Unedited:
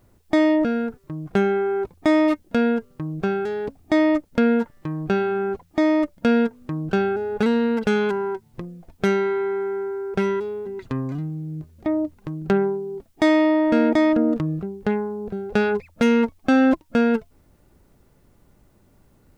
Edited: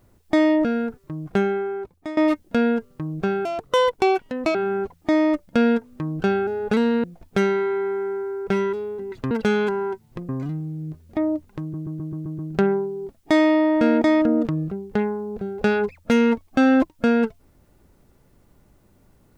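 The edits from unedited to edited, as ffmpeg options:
-filter_complex "[0:a]asplit=13[s0][s1][s2][s3][s4][s5][s6][s7][s8][s9][s10][s11][s12];[s0]atrim=end=2.17,asetpts=PTS-STARTPTS,afade=t=out:st=1.28:d=0.89:silence=0.133352[s13];[s1]atrim=start=2.17:end=3.454,asetpts=PTS-STARTPTS,afade=t=in:d=0.004:c=hsin:silence=0.133352[s14];[s2]atrim=start=3.45:end=5.24,asetpts=PTS-STARTPTS,asetrate=71883,aresample=44100[s15];[s3]atrim=start=5.236:end=7.732[s16];[s4]atrim=start=8.708:end=10.982[s17];[s5]atrim=start=7.728:end=8.712[s18];[s6]atrim=start=10.978:end=12.432[s19];[s7]atrim=start=12.298:end=12.432[s20];[s8]atrim=start=12.298:end=12.432[s21];[s9]atrim=start=12.298:end=12.432[s22];[s10]atrim=start=12.298:end=12.432[s23];[s11]atrim=start=12.298:end=12.432[s24];[s12]atrim=start=12.298[s25];[s13][s14]concat=n=2:v=0:a=1[s26];[s26][s15]acrossfade=d=0.004:c1=hsin:c2=hsin[s27];[s27][s16]acrossfade=d=0.004:c1=hsin:c2=hsin[s28];[s28][s17]acrossfade=d=0.004:c1=hsin:c2=hsin[s29];[s29][s18]acrossfade=d=0.004:c1=hsin:c2=hsin[s30];[s30][s19]acrossfade=d=0.004:c1=hsin:c2=hsin[s31];[s31][s20]acrossfade=d=0.004:c1=hsin:c2=hsin[s32];[s32][s21]acrossfade=d=0.004:c1=hsin:c2=hsin[s33];[s33][s22]acrossfade=d=0.004:c1=hsin:c2=hsin[s34];[s34][s23]acrossfade=d=0.004:c1=hsin:c2=hsin[s35];[s35][s24]acrossfade=d=0.004:c1=hsin:c2=hsin[s36];[s36][s25]acrossfade=d=0.004:c1=hsin:c2=hsin"

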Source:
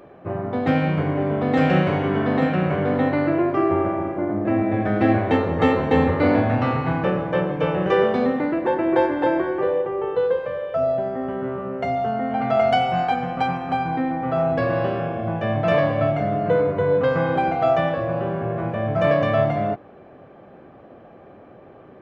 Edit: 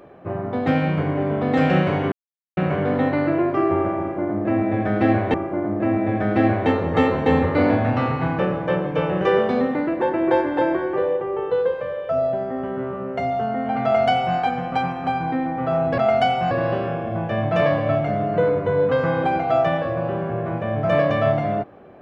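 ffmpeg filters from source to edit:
-filter_complex "[0:a]asplit=6[s0][s1][s2][s3][s4][s5];[s0]atrim=end=2.12,asetpts=PTS-STARTPTS,afade=t=out:st=2.116:d=0.004:c=hsin[s6];[s1]atrim=start=2.12:end=2.57,asetpts=PTS-STARTPTS,volume=0[s7];[s2]atrim=start=2.57:end=5.342,asetpts=PTS-STARTPTS,afade=t=in:d=0.004:c=hsin[s8];[s3]atrim=start=3.988:end=14.632[s9];[s4]atrim=start=12.488:end=13.022[s10];[s5]atrim=start=14.628[s11];[s6][s7][s8]concat=n=3:v=0:a=1[s12];[s12][s9]acrossfade=d=0.004:c1=hsin:c2=hsin[s13];[s13][s10]acrossfade=d=0.004:c1=hsin:c2=hsin[s14];[s14][s11]acrossfade=d=0.004:c1=hsin:c2=hsin"

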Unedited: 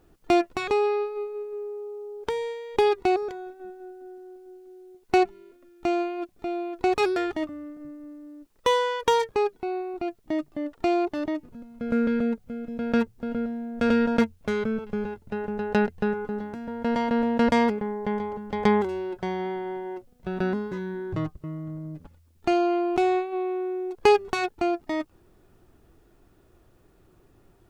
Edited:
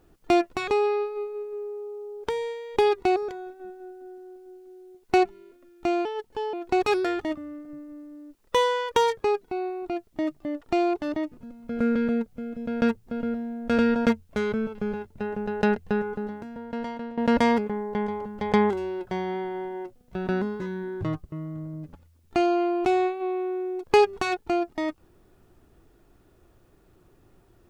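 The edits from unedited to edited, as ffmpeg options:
-filter_complex "[0:a]asplit=4[s0][s1][s2][s3];[s0]atrim=end=6.054[s4];[s1]atrim=start=6.05:end=6.65,asetpts=PTS-STARTPTS,asetrate=54684,aresample=44100[s5];[s2]atrim=start=6.646:end=17.29,asetpts=PTS-STARTPTS,afade=t=out:st=9.584:d=1.06:silence=0.158489[s6];[s3]atrim=start=17.29,asetpts=PTS-STARTPTS,afade=t=in:d=0.004:c=hsin:silence=0.158489[s7];[s4][s5]acrossfade=d=0.004:c1=hsin:c2=hsin[s8];[s6][s7]concat=n=2:v=0:a=1[s9];[s8][s9]acrossfade=d=0.004:c1=hsin:c2=hsin"

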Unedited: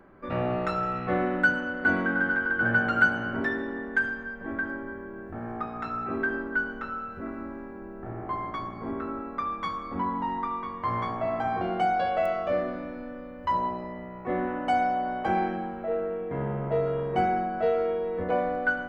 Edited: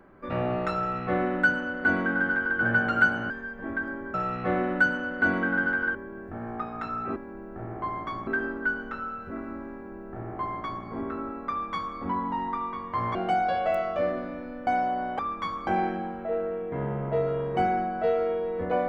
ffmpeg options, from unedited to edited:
-filter_complex "[0:a]asplit=10[s0][s1][s2][s3][s4][s5][s6][s7][s8][s9];[s0]atrim=end=3.302[s10];[s1]atrim=start=4.118:end=4.962[s11];[s2]atrim=start=0.768:end=2.582[s12];[s3]atrim=start=4.958:end=6.172[s13];[s4]atrim=start=7.628:end=8.742[s14];[s5]atrim=start=6.168:end=11.052[s15];[s6]atrim=start=11.658:end=13.182[s16];[s7]atrim=start=14.738:end=15.262[s17];[s8]atrim=start=9.398:end=9.882[s18];[s9]atrim=start=15.258[s19];[s10][s11]acrossfade=d=0.004:c1=hsin:c2=hsin[s20];[s20][s12]acrossfade=d=0.004:c1=hsin:c2=hsin[s21];[s21][s13]acrossfade=d=0.004:c1=hsin:c2=hsin[s22];[s22][s14]acrossfade=d=0.004:c1=hsin:c2=hsin[s23];[s23][s15]acrossfade=d=0.004:c1=hsin:c2=hsin[s24];[s24][s16]acrossfade=d=0.004:c1=hsin:c2=hsin[s25];[s25][s17]acrossfade=d=0.004:c1=hsin:c2=hsin[s26];[s26][s18]acrossfade=d=0.004:c1=hsin:c2=hsin[s27];[s27][s19]acrossfade=d=0.004:c1=hsin:c2=hsin"

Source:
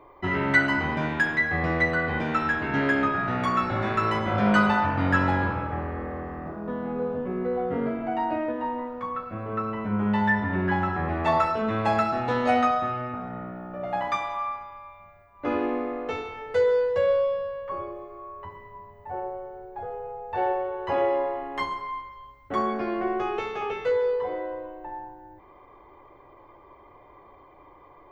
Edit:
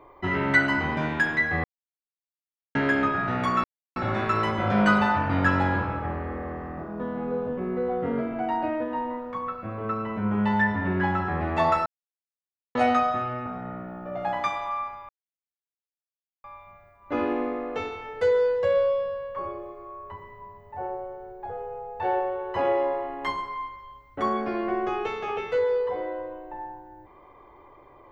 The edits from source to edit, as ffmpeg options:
-filter_complex "[0:a]asplit=7[s0][s1][s2][s3][s4][s5][s6];[s0]atrim=end=1.64,asetpts=PTS-STARTPTS,afade=t=out:st=1.636:d=0.004:c=hsin[s7];[s1]atrim=start=1.64:end=2.75,asetpts=PTS-STARTPTS,volume=0[s8];[s2]atrim=start=2.75:end=3.64,asetpts=PTS-STARTPTS,afade=t=in:d=0.004:c=hsin,afade=t=out:st=0.886:d=0.004:c=hsin,apad=pad_dur=0.32[s9];[s3]atrim=start=3.64:end=11.54,asetpts=PTS-STARTPTS,afade=t=in:d=0.004:c=hsin,afade=t=out:st=7.896:d=0.004:c=hsin[s10];[s4]atrim=start=11.54:end=12.43,asetpts=PTS-STARTPTS,volume=0[s11];[s5]atrim=start=12.43:end=14.77,asetpts=PTS-STARTPTS,afade=t=in:d=0.004:c=hsin,afade=t=out:st=2.336:d=0.004:c=hsin,apad=pad_dur=1.35[s12];[s6]atrim=start=14.77,asetpts=PTS-STARTPTS,afade=t=in:d=0.004:c=hsin[s13];[s7][s8][s9][s10][s11][s12][s13]concat=n=7:v=0:a=1"

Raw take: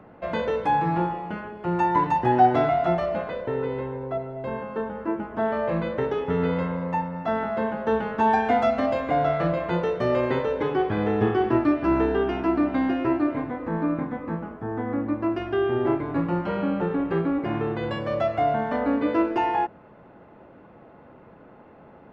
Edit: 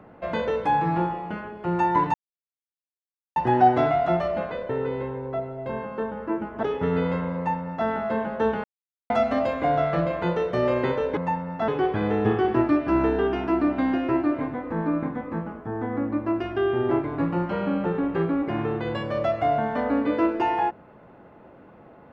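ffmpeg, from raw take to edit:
-filter_complex "[0:a]asplit=7[s0][s1][s2][s3][s4][s5][s6];[s0]atrim=end=2.14,asetpts=PTS-STARTPTS,afade=t=out:st=2.136:d=0.004:c=hsin,apad=pad_dur=1.22[s7];[s1]atrim=start=2.14:end=5.412,asetpts=PTS-STARTPTS,afade=t=in:d=0.004:c=hsin[s8];[s2]atrim=start=6.098:end=8.11,asetpts=PTS-STARTPTS,afade=t=out:st=2.008:d=0.004:c=hsin[s9];[s3]atrim=start=8.11:end=8.57,asetpts=PTS-STARTPTS,volume=0[s10];[s4]atrim=start=8.57:end=10.642,asetpts=PTS-STARTPTS,afade=t=in:d=0.004:c=hsin[s11];[s5]atrim=start=6.828:end=7.342[s12];[s6]atrim=start=10.638[s13];[s7][s8]concat=n=2:v=0:a=1[s14];[s9][s10][s11]concat=n=3:v=0:a=1[s15];[s14][s15]acrossfade=d=0.004:c1=hsin:c2=hsin[s16];[s16][s12]acrossfade=d=0.004:c1=hsin:c2=hsin[s17];[s17][s13]acrossfade=d=0.004:c1=hsin:c2=hsin"

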